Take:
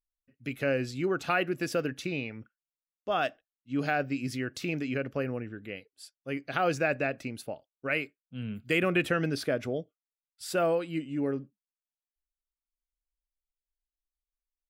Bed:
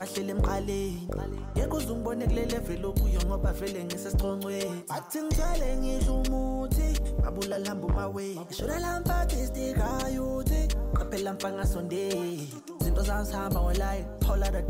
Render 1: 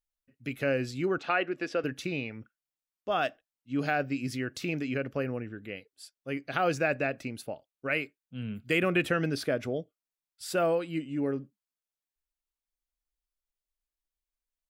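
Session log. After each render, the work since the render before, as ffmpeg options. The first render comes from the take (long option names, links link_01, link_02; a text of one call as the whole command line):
ffmpeg -i in.wav -filter_complex "[0:a]asettb=1/sr,asplit=3[link_01][link_02][link_03];[link_01]atrim=end=1.184[link_04];[link_02]atrim=start=1.18:end=1.84,asetpts=PTS-STARTPTS,afade=type=in:duration=0.004:curve=qsin,afade=type=out:start_time=0.656:duration=0.004:curve=qsin,highpass=290,lowpass=3900[link_05];[link_03]atrim=start=1.836[link_06];[link_04][link_05]acrossfade=duration=0.004:curve1=hsin:curve2=qsin[link_07];[link_07][link_06]acrossfade=duration=0.004:curve1=qsin:curve2=hsin" out.wav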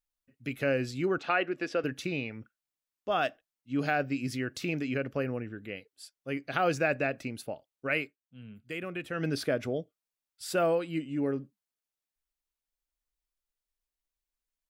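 ffmpeg -i in.wav -filter_complex "[0:a]asplit=3[link_01][link_02][link_03];[link_01]atrim=end=8.2,asetpts=PTS-STARTPTS,afade=type=out:start_time=8.01:duration=0.19:silence=0.281838[link_04];[link_02]atrim=start=8.2:end=9.1,asetpts=PTS-STARTPTS,volume=-11dB[link_05];[link_03]atrim=start=9.1,asetpts=PTS-STARTPTS,afade=type=in:duration=0.19:silence=0.281838[link_06];[link_04][link_05][link_06]concat=n=3:v=0:a=1" out.wav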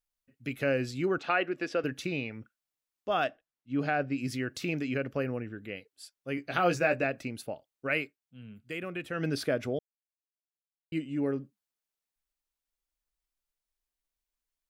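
ffmpeg -i in.wav -filter_complex "[0:a]asettb=1/sr,asplit=3[link_01][link_02][link_03];[link_01]atrim=end=3.244[link_04];[link_02]atrim=start=3.24:end=4.18,asetpts=PTS-STARTPTS,afade=type=in:duration=0.004:curve=qsin,afade=type=out:start_time=0.936:duration=0.004:curve=qsin,lowpass=frequency=2600:poles=1[link_05];[link_03]atrim=start=4.176[link_06];[link_04][link_05]acrossfade=duration=0.004:curve1=hsin:curve2=qsin[link_07];[link_07][link_06]acrossfade=duration=0.004:curve1=qsin:curve2=hsin,asettb=1/sr,asplit=3[link_08][link_09][link_10];[link_08]atrim=end=6.364[link_11];[link_09]atrim=start=6.36:end=7.04,asetpts=PTS-STARTPTS,afade=type=in:duration=0.004:curve=qsin,afade=type=out:start_time=0.676:duration=0.004:curve=qsin,asplit=2[link_12][link_13];[link_13]adelay=17,volume=-5.5dB[link_14];[link_12][link_14]amix=inputs=2:normalize=0,atrim=end_sample=29988[link_15];[link_10]atrim=start=7.036[link_16];[link_11][link_15]acrossfade=duration=0.004:curve1=hsin:curve2=qsin[link_17];[link_17][link_16]acrossfade=duration=0.004:curve1=qsin:curve2=hsin,asplit=3[link_18][link_19][link_20];[link_18]atrim=end=9.79,asetpts=PTS-STARTPTS,afade=type=out:start_time=9.786:duration=0.004:curve=hsin[link_21];[link_19]atrim=start=9.79:end=10.92,asetpts=PTS-STARTPTS,volume=0[link_22];[link_20]atrim=start=10.92,asetpts=PTS-STARTPTS,afade=type=in:duration=0.004:curve=hsin[link_23];[link_21][link_22][link_23]concat=n=3:v=0:a=1" out.wav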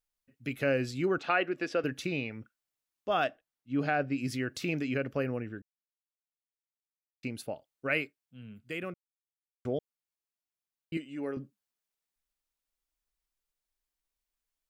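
ffmpeg -i in.wav -filter_complex "[0:a]asettb=1/sr,asplit=3[link_01][link_02][link_03];[link_01]atrim=end=10.974[link_04];[link_02]atrim=start=10.97:end=11.37,asetpts=PTS-STARTPTS,afade=type=in:duration=0.004:curve=qsin,afade=type=out:start_time=0.396:duration=0.004:curve=qsin,highpass=frequency=580:poles=1[link_05];[link_03]atrim=start=11.366[link_06];[link_04][link_05]acrossfade=duration=0.004:curve1=hsin:curve2=qsin[link_07];[link_07][link_06]acrossfade=duration=0.004:curve1=qsin:curve2=hsin,asplit=5[link_08][link_09][link_10][link_11][link_12];[link_08]atrim=end=5.62,asetpts=PTS-STARTPTS,afade=type=out:start_time=5.616:duration=0.004:curve=hsin[link_13];[link_09]atrim=start=5.62:end=7.23,asetpts=PTS-STARTPTS,volume=0[link_14];[link_10]atrim=start=7.23:end=8.94,asetpts=PTS-STARTPTS,afade=type=in:duration=0.004:curve=hsin,afade=type=out:start_time=1.706:duration=0.004:curve=hsin[link_15];[link_11]atrim=start=8.94:end=9.65,asetpts=PTS-STARTPTS,volume=0[link_16];[link_12]atrim=start=9.65,asetpts=PTS-STARTPTS,afade=type=in:duration=0.004:curve=hsin[link_17];[link_13][link_14][link_15][link_16][link_17]concat=n=5:v=0:a=1" out.wav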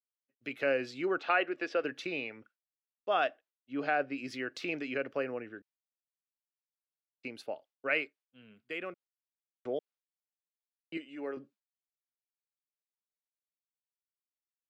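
ffmpeg -i in.wav -filter_complex "[0:a]agate=range=-33dB:threshold=-53dB:ratio=3:detection=peak,acrossover=split=300 5200:gain=0.112 1 0.158[link_01][link_02][link_03];[link_01][link_02][link_03]amix=inputs=3:normalize=0" out.wav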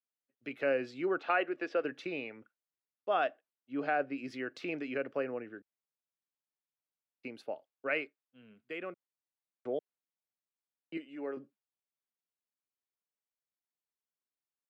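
ffmpeg -i in.wav -af "highpass=110,highshelf=frequency=2600:gain=-9" out.wav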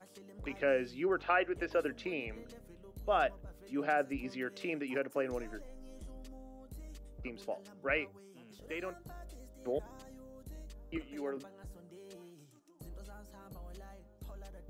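ffmpeg -i in.wav -i bed.wav -filter_complex "[1:a]volume=-22.5dB[link_01];[0:a][link_01]amix=inputs=2:normalize=0" out.wav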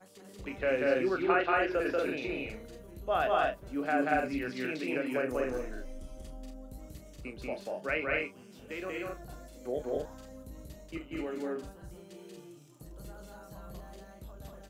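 ffmpeg -i in.wav -filter_complex "[0:a]asplit=2[link_01][link_02];[link_02]adelay=32,volume=-8.5dB[link_03];[link_01][link_03]amix=inputs=2:normalize=0,asplit=2[link_04][link_05];[link_05]aecho=0:1:186.6|233.2:0.891|0.794[link_06];[link_04][link_06]amix=inputs=2:normalize=0" out.wav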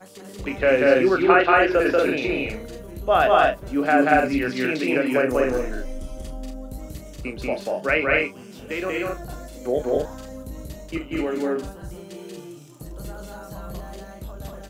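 ffmpeg -i in.wav -af "volume=11.5dB" out.wav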